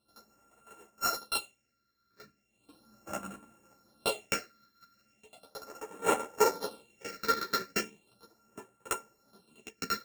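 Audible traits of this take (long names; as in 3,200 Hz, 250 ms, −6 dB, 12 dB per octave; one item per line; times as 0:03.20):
a buzz of ramps at a fixed pitch in blocks of 32 samples
phaser sweep stages 6, 0.37 Hz, lowest notch 750–4,500 Hz
sample-and-hold tremolo
a shimmering, thickened sound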